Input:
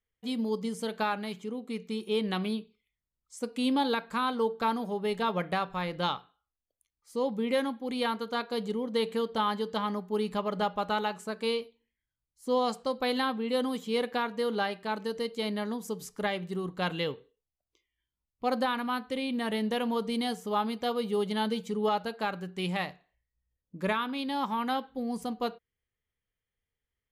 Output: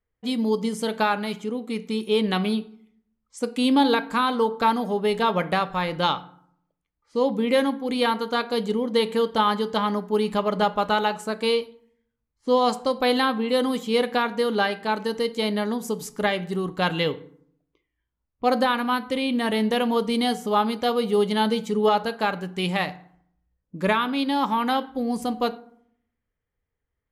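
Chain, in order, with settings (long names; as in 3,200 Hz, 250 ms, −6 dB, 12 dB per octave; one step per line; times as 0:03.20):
low-pass that shuts in the quiet parts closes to 1,500 Hz, open at −41.5 dBFS
feedback delay network reverb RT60 0.65 s, low-frequency decay 1.3×, high-frequency decay 0.55×, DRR 14 dB
level +7.5 dB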